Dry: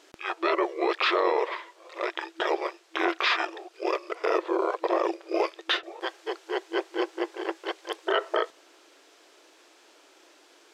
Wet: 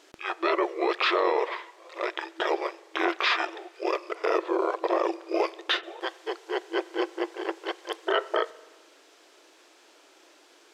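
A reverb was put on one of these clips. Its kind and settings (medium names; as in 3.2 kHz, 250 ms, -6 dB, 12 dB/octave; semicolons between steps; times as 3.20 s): spring tank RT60 1.4 s, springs 42 ms, chirp 30 ms, DRR 20 dB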